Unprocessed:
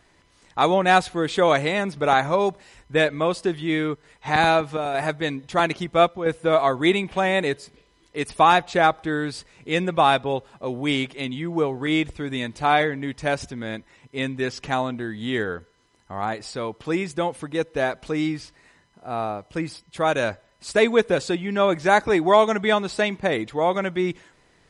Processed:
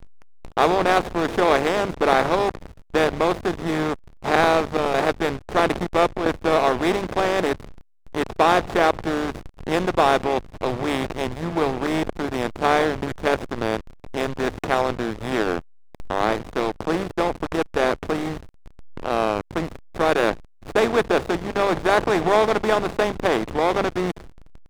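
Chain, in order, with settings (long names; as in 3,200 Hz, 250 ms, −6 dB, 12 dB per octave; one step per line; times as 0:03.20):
compressor on every frequency bin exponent 0.4
mains-hum notches 50/100/150/200 Hz
slack as between gear wheels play −10.5 dBFS
level −4.5 dB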